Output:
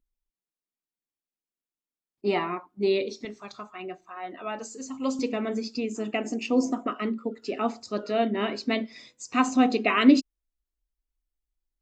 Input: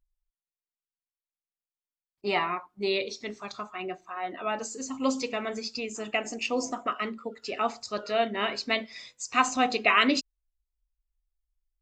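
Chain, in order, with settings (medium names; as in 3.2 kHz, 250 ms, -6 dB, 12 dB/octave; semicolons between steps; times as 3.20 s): peaking EQ 270 Hz +13 dB 1.7 oct, from 3.25 s +3.5 dB, from 5.19 s +14 dB; trim -4 dB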